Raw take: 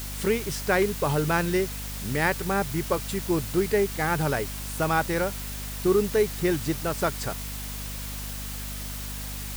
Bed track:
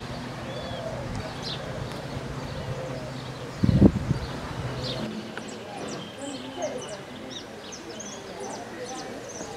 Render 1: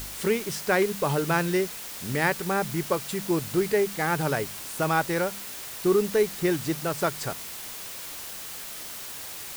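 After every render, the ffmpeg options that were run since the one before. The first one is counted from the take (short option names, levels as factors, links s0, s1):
-af "bandreject=f=50:t=h:w=4,bandreject=f=100:t=h:w=4,bandreject=f=150:t=h:w=4,bandreject=f=200:t=h:w=4,bandreject=f=250:t=h:w=4"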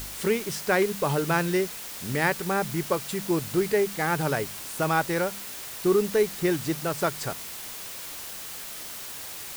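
-af anull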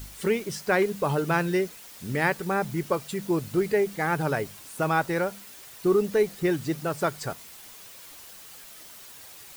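-af "afftdn=nr=9:nf=-38"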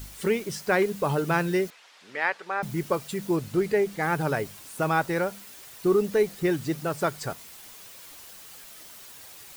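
-filter_complex "[0:a]asettb=1/sr,asplit=3[s0][s1][s2];[s0]atrim=end=1.704[s3];[s1]atrim=start=1.7:end=2.63,asetpts=PTS-STARTPTS,afade=t=in:d=0.004:c=qsin,afade=t=out:st=0.926:d=0.004:c=qsin,highpass=690,lowpass=3800[s4];[s2]atrim=start=2.626[s5];[s3][s4]acrossfade=d=0.004:c1=hsin:c2=qsin[s6];[s6][s5]acrossfade=d=0.004:c1=qsin:c2=hsin,asettb=1/sr,asplit=3[s7][s8][s9];[s7]atrim=end=3.364[s10];[s8]atrim=start=3.36:end=4.03,asetpts=PTS-STARTPTS,afade=t=in:d=0.004:c=qsin,afade=t=out:st=0.666:d=0.004:c=qsin,highshelf=f=9800:g=-5.5[s11];[s9]atrim=start=4.026[s12];[s10][s11]acrossfade=d=0.004:c1=hsin:c2=qsin[s13];[s13][s12]acrossfade=d=0.004:c1=qsin:c2=hsin"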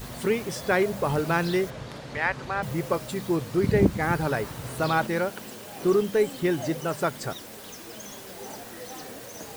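-filter_complex "[1:a]volume=0.562[s0];[0:a][s0]amix=inputs=2:normalize=0"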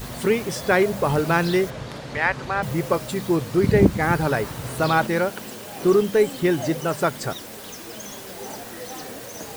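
-af "volume=1.68"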